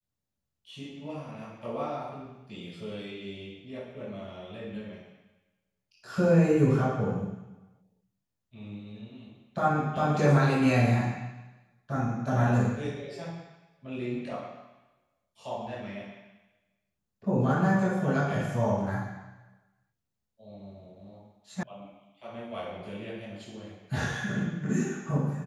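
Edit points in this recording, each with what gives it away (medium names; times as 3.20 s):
21.63 s: sound stops dead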